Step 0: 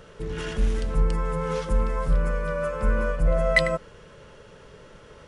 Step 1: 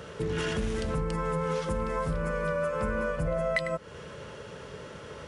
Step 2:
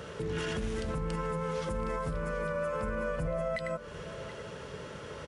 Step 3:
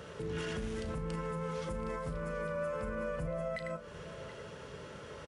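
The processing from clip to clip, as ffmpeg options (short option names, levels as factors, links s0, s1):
-af "highpass=f=62:w=0.5412,highpass=f=62:w=1.3066,acompressor=threshold=0.0251:ratio=6,volume=1.88"
-af "alimiter=level_in=1.12:limit=0.0631:level=0:latency=1:release=129,volume=0.891,aecho=1:1:728:0.168"
-filter_complex "[0:a]asplit=2[s0][s1];[s1]adelay=36,volume=0.266[s2];[s0][s2]amix=inputs=2:normalize=0,volume=0.596"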